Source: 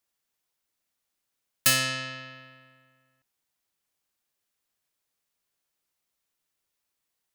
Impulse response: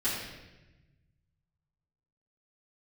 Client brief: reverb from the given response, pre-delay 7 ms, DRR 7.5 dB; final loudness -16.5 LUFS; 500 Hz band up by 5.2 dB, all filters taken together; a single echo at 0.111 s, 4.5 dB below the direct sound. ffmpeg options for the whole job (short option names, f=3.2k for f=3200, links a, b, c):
-filter_complex "[0:a]equalizer=f=500:t=o:g=6,aecho=1:1:111:0.596,asplit=2[a][b];[1:a]atrim=start_sample=2205,adelay=7[c];[b][c]afir=irnorm=-1:irlink=0,volume=-15.5dB[d];[a][d]amix=inputs=2:normalize=0,volume=6.5dB"